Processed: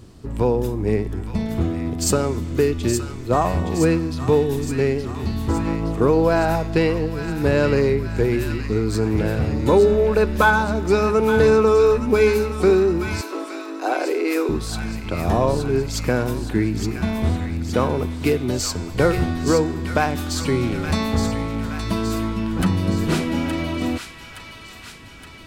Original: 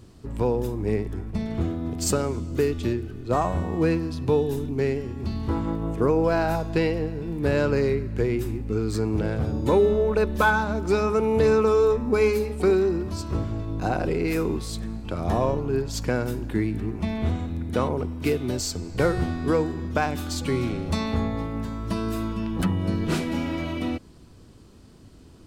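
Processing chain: 13.21–14.49 s: steep high-pass 280 Hz 72 dB/octave; feedback echo behind a high-pass 869 ms, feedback 61%, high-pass 1.5 kHz, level -6 dB; trim +4.5 dB

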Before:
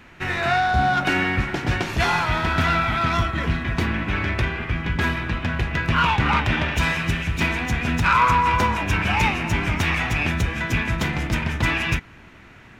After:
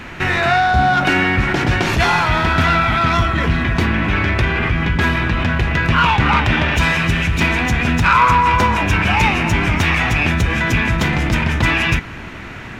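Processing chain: treble shelf 9.4 kHz -4 dB; in parallel at -2 dB: compressor with a negative ratio -32 dBFS; on the sum: trim +4.5 dB

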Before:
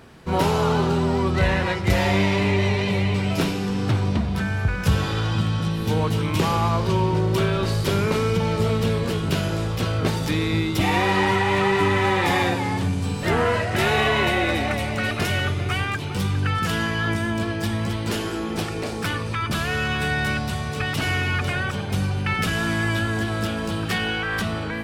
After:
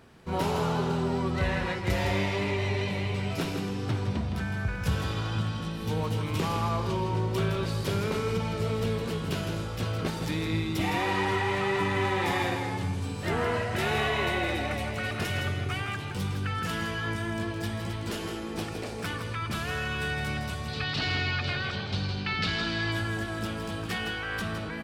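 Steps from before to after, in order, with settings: 20.68–22.92 s: resonant low-pass 4.3 kHz, resonance Q 4.3; delay 162 ms -7.5 dB; trim -8 dB

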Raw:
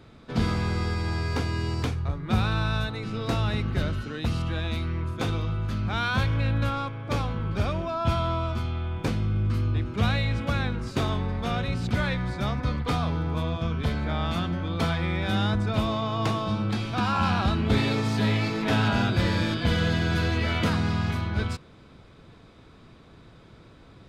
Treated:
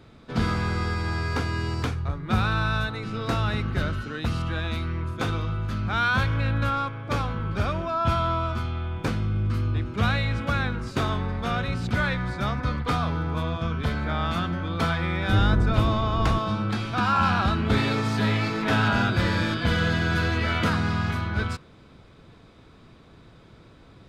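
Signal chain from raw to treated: 15.29–16.39 s: octave divider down 1 oct, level +4 dB; dynamic bell 1.4 kHz, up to +6 dB, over -46 dBFS, Q 1.8

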